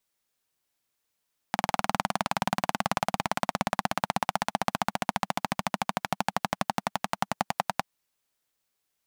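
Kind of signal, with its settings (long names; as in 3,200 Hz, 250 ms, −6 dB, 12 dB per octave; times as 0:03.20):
pulse-train model of a single-cylinder engine, changing speed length 6.29 s, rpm 2,400, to 1,200, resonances 200/780 Hz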